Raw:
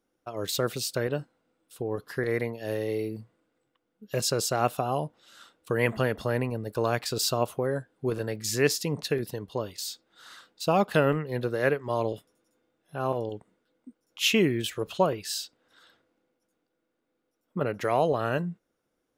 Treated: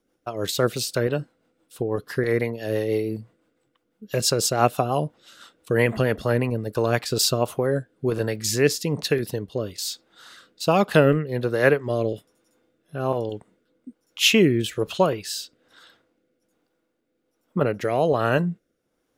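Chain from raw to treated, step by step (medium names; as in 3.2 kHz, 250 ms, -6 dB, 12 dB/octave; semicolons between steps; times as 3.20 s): rotary cabinet horn 6 Hz, later 1.2 Hz, at 6.74 s; trim +7.5 dB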